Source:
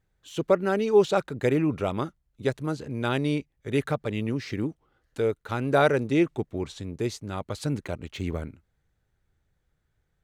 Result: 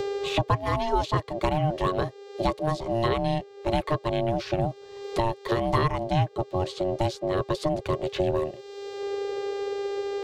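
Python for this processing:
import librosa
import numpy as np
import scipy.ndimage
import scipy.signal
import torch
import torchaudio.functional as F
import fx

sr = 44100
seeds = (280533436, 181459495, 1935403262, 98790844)

y = x * np.sin(2.0 * np.pi * 460.0 * np.arange(len(x)) / sr)
y = fx.small_body(y, sr, hz=(410.0, 1100.0), ring_ms=70, db=16)
y = fx.dmg_buzz(y, sr, base_hz=400.0, harmonics=20, level_db=-56.0, tilt_db=-8, odd_only=False)
y = fx.graphic_eq_10(y, sr, hz=(125, 250, 500, 1000, 4000), db=(10, -6, 11, -4, 8))
y = fx.band_squash(y, sr, depth_pct=100)
y = y * 10.0 ** (-1.5 / 20.0)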